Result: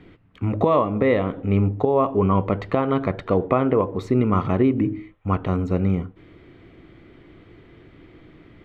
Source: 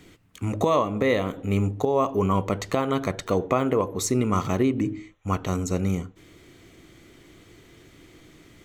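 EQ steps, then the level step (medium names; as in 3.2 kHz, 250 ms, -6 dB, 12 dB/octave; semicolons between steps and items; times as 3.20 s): distance through air 430 m; +4.5 dB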